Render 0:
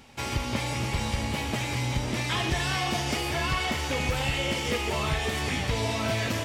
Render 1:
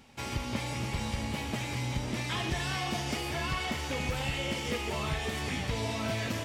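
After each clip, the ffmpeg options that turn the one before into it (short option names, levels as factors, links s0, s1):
-af "equalizer=f=200:t=o:w=0.93:g=3,volume=0.531"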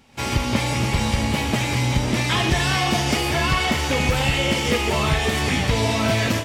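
-af "dynaudnorm=f=110:g=3:m=3.55,volume=1.19"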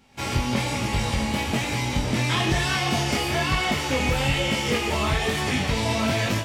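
-af "flanger=delay=19:depth=5.2:speed=1.1"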